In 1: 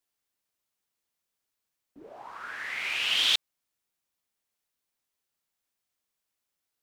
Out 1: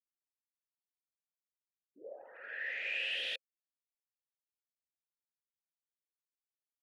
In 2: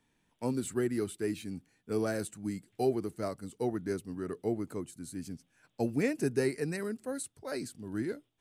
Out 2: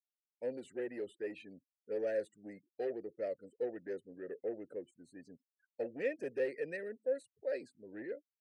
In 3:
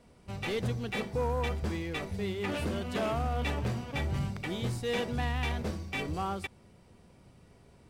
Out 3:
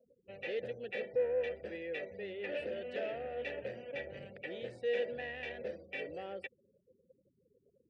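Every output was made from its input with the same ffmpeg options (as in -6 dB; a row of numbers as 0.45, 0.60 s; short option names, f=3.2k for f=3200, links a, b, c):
-filter_complex "[0:a]afftfilt=real='re*gte(hypot(re,im),0.00398)':imag='im*gte(hypot(re,im),0.00398)':win_size=1024:overlap=0.75,asoftclip=type=tanh:threshold=-27.5dB,asplit=3[a][b][c];[a]bandpass=f=530:t=q:w=8,volume=0dB[d];[b]bandpass=f=1.84k:t=q:w=8,volume=-6dB[e];[c]bandpass=f=2.48k:t=q:w=8,volume=-9dB[f];[d][e][f]amix=inputs=3:normalize=0,volume=7.5dB"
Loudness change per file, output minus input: -10.5, -5.5, -6.0 LU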